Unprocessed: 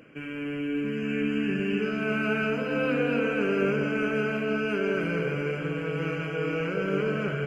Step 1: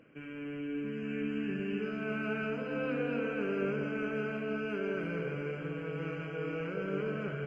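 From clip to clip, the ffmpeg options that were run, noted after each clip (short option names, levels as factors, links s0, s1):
-af "highshelf=f=3800:g=-9,volume=0.422"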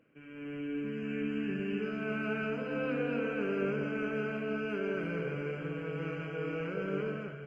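-af "dynaudnorm=f=110:g=7:m=2.66,volume=0.398"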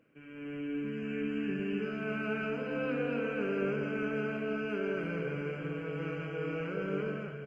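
-af "aecho=1:1:287:0.188"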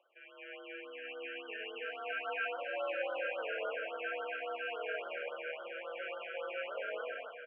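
-af "highpass=f=570:t=q:w=0.5412,highpass=f=570:t=q:w=1.307,lowpass=f=3300:t=q:w=0.5176,lowpass=f=3300:t=q:w=0.7071,lowpass=f=3300:t=q:w=1.932,afreqshift=53,afftfilt=real='re*(1-between(b*sr/1024,900*pow(2200/900,0.5+0.5*sin(2*PI*3.6*pts/sr))/1.41,900*pow(2200/900,0.5+0.5*sin(2*PI*3.6*pts/sr))*1.41))':imag='im*(1-between(b*sr/1024,900*pow(2200/900,0.5+0.5*sin(2*PI*3.6*pts/sr))/1.41,900*pow(2200/900,0.5+0.5*sin(2*PI*3.6*pts/sr))*1.41))':win_size=1024:overlap=0.75,volume=1.5"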